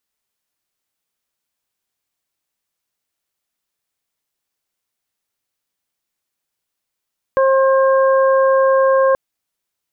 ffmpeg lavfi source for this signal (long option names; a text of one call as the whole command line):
ffmpeg -f lavfi -i "aevalsrc='0.282*sin(2*PI*534*t)+0.133*sin(2*PI*1068*t)+0.0562*sin(2*PI*1602*t)':duration=1.78:sample_rate=44100" out.wav